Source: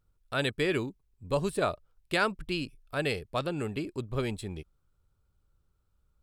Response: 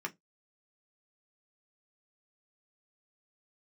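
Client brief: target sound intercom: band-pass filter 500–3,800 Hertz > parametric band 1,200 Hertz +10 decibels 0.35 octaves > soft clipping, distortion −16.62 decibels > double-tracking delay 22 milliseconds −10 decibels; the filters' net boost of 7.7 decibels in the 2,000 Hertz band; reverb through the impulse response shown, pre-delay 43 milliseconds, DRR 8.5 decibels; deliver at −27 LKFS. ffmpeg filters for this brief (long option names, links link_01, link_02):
-filter_complex "[0:a]equalizer=frequency=2000:width_type=o:gain=9,asplit=2[link_01][link_02];[1:a]atrim=start_sample=2205,adelay=43[link_03];[link_02][link_03]afir=irnorm=-1:irlink=0,volume=-10.5dB[link_04];[link_01][link_04]amix=inputs=2:normalize=0,highpass=500,lowpass=3800,equalizer=frequency=1200:width_type=o:width=0.35:gain=10,asoftclip=threshold=-14dB,asplit=2[link_05][link_06];[link_06]adelay=22,volume=-10dB[link_07];[link_05][link_07]amix=inputs=2:normalize=0,volume=1.5dB"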